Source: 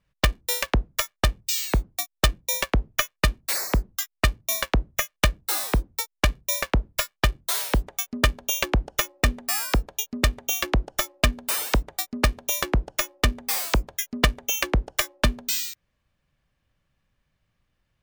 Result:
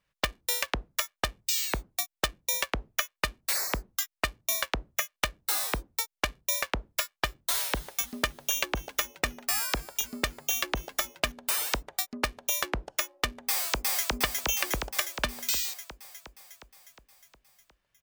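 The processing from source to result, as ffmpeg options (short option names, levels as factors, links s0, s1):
-filter_complex "[0:a]asettb=1/sr,asplit=3[s0][s1][s2];[s0]atrim=end=7.004[s3];[s1]atrim=start=7:end=11.32,asetpts=PTS-STARTPTS,afade=t=in:d=0.004:c=qsin,afade=t=out:st=4.316:d=0.004:c=qsin,asplit=6[s4][s5][s6][s7][s8][s9];[s5]adelay=267,afreqshift=-98,volume=0.0944[s10];[s6]adelay=534,afreqshift=-196,volume=0.055[s11];[s7]adelay=801,afreqshift=-294,volume=0.0316[s12];[s8]adelay=1068,afreqshift=-392,volume=0.0184[s13];[s9]adelay=1335,afreqshift=-490,volume=0.0107[s14];[s4][s10][s11][s12][s13][s14]amix=inputs=6:normalize=0,atrim=end_sample=190512[s15];[s2]atrim=start=11.316[s16];[s3][s15]acrossfade=d=0.004:c1=hsin:c2=qsin[s17];[s17][s16]acrossfade=d=0.004:c1=qsin:c2=hsin,asplit=2[s18][s19];[s19]afade=t=in:st=13.41:d=0.01,afade=t=out:st=14.04:d=0.01,aecho=0:1:360|720|1080|1440|1800|2160|2520|2880|3240|3600|3960:0.944061|0.61364|0.398866|0.259263|0.168521|0.109538|0.0712|0.04628|0.030082|0.0195533|0.0127096[s20];[s18][s20]amix=inputs=2:normalize=0,lowshelf=f=320:g=-11.5,acompressor=threshold=0.0501:ratio=2.5"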